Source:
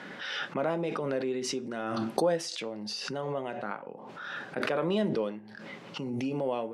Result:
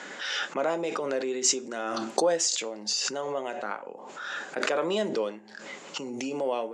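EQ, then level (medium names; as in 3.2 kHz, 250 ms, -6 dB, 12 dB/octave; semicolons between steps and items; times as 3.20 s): high-pass 320 Hz 12 dB/octave; resonant low-pass 7.1 kHz, resonance Q 9.5; +3.0 dB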